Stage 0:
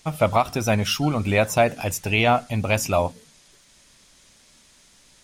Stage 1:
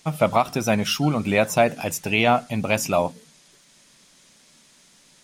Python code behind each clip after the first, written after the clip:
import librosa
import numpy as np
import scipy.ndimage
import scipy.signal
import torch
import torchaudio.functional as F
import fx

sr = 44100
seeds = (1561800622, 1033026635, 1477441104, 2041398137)

y = fx.low_shelf_res(x, sr, hz=110.0, db=-10.0, q=1.5)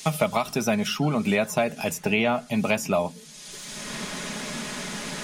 y = x + 0.45 * np.pad(x, (int(4.8 * sr / 1000.0), 0))[:len(x)]
y = fx.band_squash(y, sr, depth_pct=100)
y = y * 10.0 ** (-4.0 / 20.0)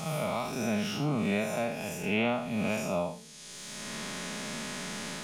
y = fx.spec_blur(x, sr, span_ms=154.0)
y = y * 10.0 ** (-3.0 / 20.0)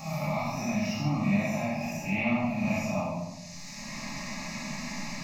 y = fx.fixed_phaser(x, sr, hz=2200.0, stages=8)
y = fx.room_shoebox(y, sr, seeds[0], volume_m3=430.0, walls='mixed', distance_m=2.3)
y = y * 10.0 ** (-3.0 / 20.0)